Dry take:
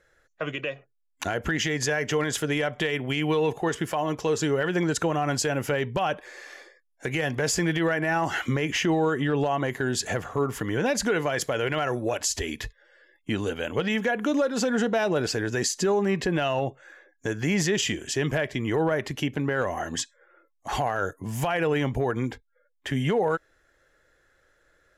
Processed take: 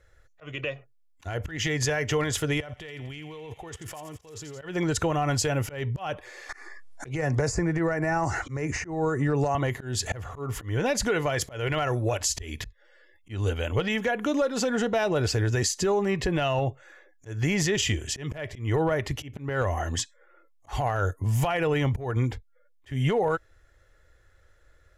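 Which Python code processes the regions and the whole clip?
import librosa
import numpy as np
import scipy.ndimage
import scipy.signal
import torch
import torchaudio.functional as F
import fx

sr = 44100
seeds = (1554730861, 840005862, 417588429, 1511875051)

y = fx.chain(x, sr, fx.level_steps(step_db=20),
    fx.echo_wet_highpass(ms=85, feedback_pct=74, hz=2300.0, wet_db=-8.5), at=(2.6, 4.62))
y = fx.chain(y, sr, fx.env_phaser(low_hz=430.0, high_hz=3200.0, full_db=-24.5),
    fx.resample_bad(factor=2, down='none', up='filtered'),
    fx.band_squash(depth_pct=70), at=(6.49, 9.55))
y = fx.low_shelf_res(y, sr, hz=130.0, db=11.5, q=1.5)
y = fx.notch(y, sr, hz=1600.0, q=13.0)
y = fx.auto_swell(y, sr, attack_ms=204.0)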